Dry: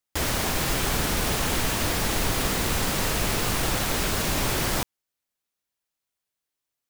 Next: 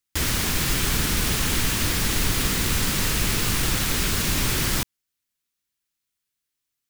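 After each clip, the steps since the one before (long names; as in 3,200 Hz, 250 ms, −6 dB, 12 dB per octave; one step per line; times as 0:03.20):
parametric band 670 Hz −11 dB 1.4 octaves
level +3.5 dB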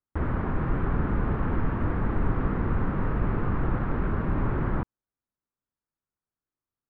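low-pass filter 1,300 Hz 24 dB per octave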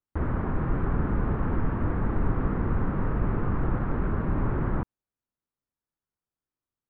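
high-shelf EQ 2,700 Hz −8.5 dB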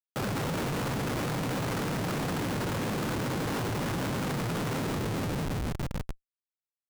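echo machine with several playback heads 146 ms, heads all three, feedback 58%, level −13.5 dB
cochlear-implant simulation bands 8
comparator with hysteresis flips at −43 dBFS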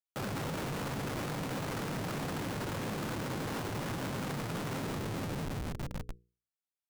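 mains-hum notches 60/120/180/240/300/360/420/480 Hz
level −5 dB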